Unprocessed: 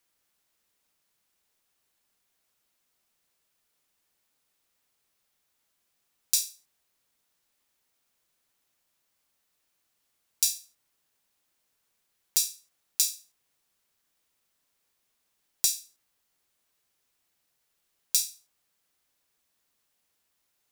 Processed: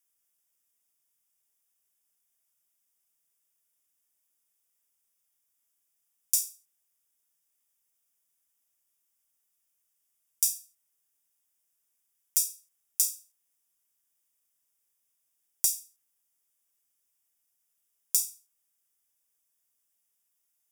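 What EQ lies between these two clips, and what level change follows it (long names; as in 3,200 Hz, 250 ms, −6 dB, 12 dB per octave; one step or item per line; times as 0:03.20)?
Butterworth band-reject 4,200 Hz, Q 4
high-shelf EQ 6,800 Hz +10.5 dB
parametric band 9,800 Hz +6.5 dB 1.9 octaves
−12.5 dB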